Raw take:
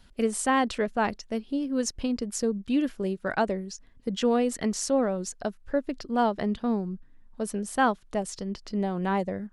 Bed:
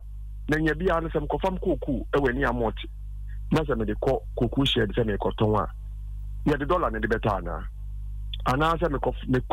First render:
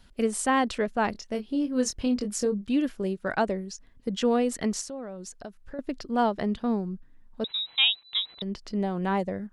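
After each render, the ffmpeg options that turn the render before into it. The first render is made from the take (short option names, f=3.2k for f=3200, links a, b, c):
-filter_complex "[0:a]asettb=1/sr,asplit=3[a][b][c];[a]atrim=end=1.124[d];[b]atrim=start=1.12:end=2.7,asetpts=PTS-STARTPTS,afade=t=in:d=0.004:c=qsin,afade=t=out:st=1.576:d=0.004:c=qsin,asplit=2[e][f];[f]adelay=24,volume=-6.5dB[g];[e][g]amix=inputs=2:normalize=0,atrim=end_sample=69678[h];[c]atrim=start=2.696[i];[d][h]acrossfade=d=0.004:c1=hsin:c2=qsin[j];[j][i]acrossfade=d=0.004:c1=qsin:c2=hsin,asettb=1/sr,asplit=3[k][l][m];[k]atrim=end=4.814[n];[l]atrim=start=4.81:end=5.79,asetpts=PTS-STARTPTS,afade=t=in:d=0.004:c=qsin,afade=t=out:st=0.976:d=0.004:c=qsin,acompressor=threshold=-40dB:ratio=2.5:attack=3.2:release=140:knee=1:detection=peak[o];[m]atrim=start=5.786[p];[n][o]acrossfade=d=0.004:c1=hsin:c2=qsin[q];[q][p]acrossfade=d=0.004:c1=qsin:c2=hsin,asettb=1/sr,asplit=3[r][s][t];[r]atrim=end=7.444[u];[s]atrim=start=7.44:end=8.42,asetpts=PTS-STARTPTS,afade=t=in:d=0.004:c=qsin,afade=t=out:st=0.976:d=0.004:c=qsin,lowpass=f=3.4k:t=q:w=0.5098,lowpass=f=3.4k:t=q:w=0.6013,lowpass=f=3.4k:t=q:w=0.9,lowpass=f=3.4k:t=q:w=2.563,afreqshift=-4000[v];[t]atrim=start=8.416[w];[u][v]acrossfade=d=0.004:c1=hsin:c2=qsin[x];[x][w]acrossfade=d=0.004:c1=qsin:c2=hsin"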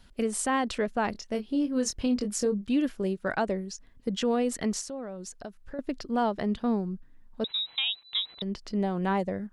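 -af "alimiter=limit=-18dB:level=0:latency=1:release=89"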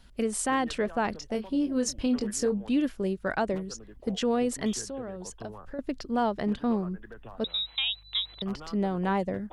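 -filter_complex "[1:a]volume=-22dB[a];[0:a][a]amix=inputs=2:normalize=0"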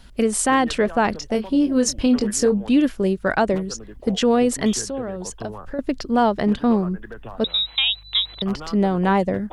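-af "volume=9dB"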